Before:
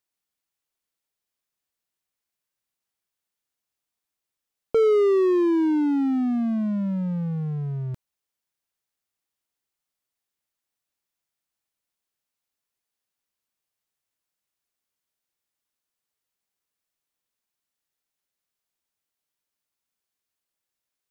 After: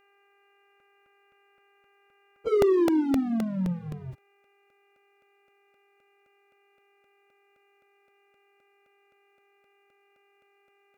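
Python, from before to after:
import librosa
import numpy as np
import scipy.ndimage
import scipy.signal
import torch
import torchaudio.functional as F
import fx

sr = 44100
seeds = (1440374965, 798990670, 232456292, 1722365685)

y = fx.dmg_buzz(x, sr, base_hz=400.0, harmonics=7, level_db=-64.0, tilt_db=-2, odd_only=False)
y = fx.stretch_vocoder_free(y, sr, factor=0.52)
y = fx.buffer_crackle(y, sr, first_s=0.8, period_s=0.26, block=64, kind='repeat')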